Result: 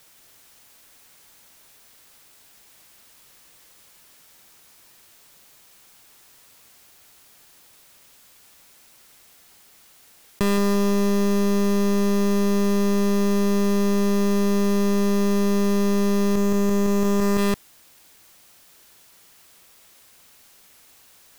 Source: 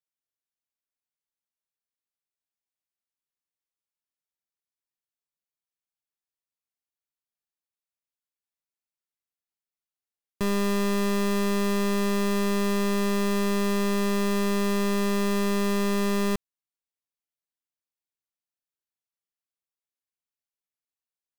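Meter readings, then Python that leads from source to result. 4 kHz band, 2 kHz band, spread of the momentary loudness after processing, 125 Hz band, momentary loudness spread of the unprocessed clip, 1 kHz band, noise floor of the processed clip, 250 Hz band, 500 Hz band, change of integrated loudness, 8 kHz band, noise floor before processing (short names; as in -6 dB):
+0.5 dB, -0.5 dB, 0 LU, n/a, 0 LU, +1.5 dB, -53 dBFS, +6.0 dB, +5.0 dB, +4.5 dB, +3.0 dB, under -85 dBFS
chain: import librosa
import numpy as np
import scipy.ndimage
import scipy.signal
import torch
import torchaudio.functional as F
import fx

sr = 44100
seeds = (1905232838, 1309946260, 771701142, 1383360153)

y = fx.echo_feedback(x, sr, ms=169, feedback_pct=59, wet_db=-8.0)
y = fx.env_flatten(y, sr, amount_pct=100)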